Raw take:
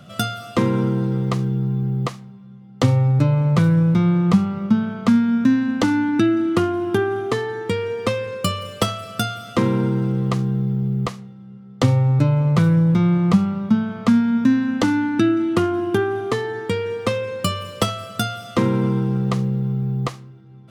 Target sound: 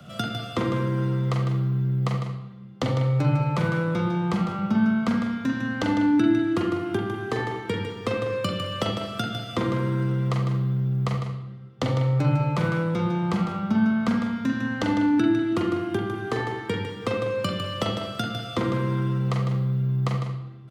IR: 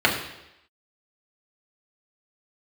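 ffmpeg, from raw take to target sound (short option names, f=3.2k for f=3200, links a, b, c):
-filter_complex "[0:a]acrossover=split=120|300|5800[a][b][c][d];[a]acompressor=threshold=-34dB:ratio=4[e];[b]acompressor=threshold=-29dB:ratio=4[f];[c]acompressor=threshold=-26dB:ratio=4[g];[d]acompressor=threshold=-52dB:ratio=4[h];[e][f][g][h]amix=inputs=4:normalize=0,aecho=1:1:153:0.398,asplit=2[i][j];[1:a]atrim=start_sample=2205,adelay=42[k];[j][k]afir=irnorm=-1:irlink=0,volume=-19.5dB[l];[i][l]amix=inputs=2:normalize=0,volume=-2dB"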